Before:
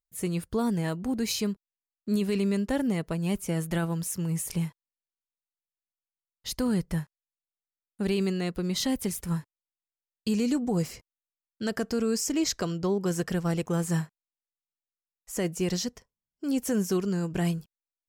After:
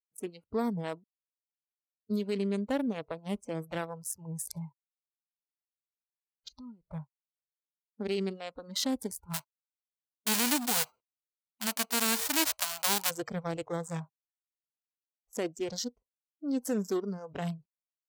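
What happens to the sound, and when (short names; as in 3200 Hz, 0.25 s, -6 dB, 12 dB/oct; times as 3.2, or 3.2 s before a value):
1.04–2.1 mute
6.48–6.89 compressor 4:1, threshold -39 dBFS
9.33–13.09 spectral whitening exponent 0.1
whole clip: Wiener smoothing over 25 samples; spectral noise reduction 21 dB; HPF 290 Hz 6 dB/oct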